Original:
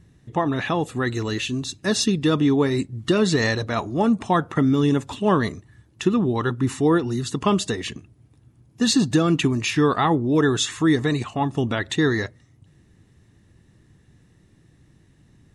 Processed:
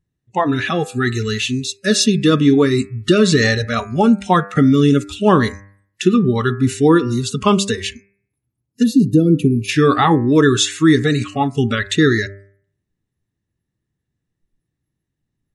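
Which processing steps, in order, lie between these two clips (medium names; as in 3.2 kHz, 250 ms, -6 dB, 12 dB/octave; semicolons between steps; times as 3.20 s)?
time-frequency box 8.83–9.69 s, 780–9500 Hz -17 dB; spectral noise reduction 29 dB; de-hum 99.04 Hz, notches 26; trim +7 dB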